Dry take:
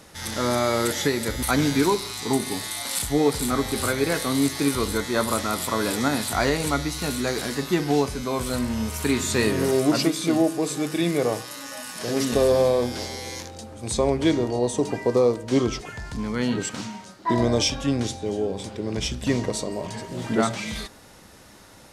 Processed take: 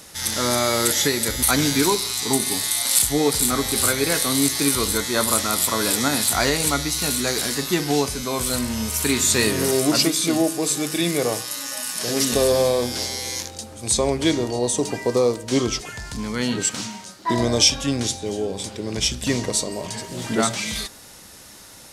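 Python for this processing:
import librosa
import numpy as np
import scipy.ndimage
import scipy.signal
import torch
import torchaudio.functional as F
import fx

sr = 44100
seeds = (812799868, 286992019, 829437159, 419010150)

y = fx.high_shelf(x, sr, hz=3100.0, db=11.5)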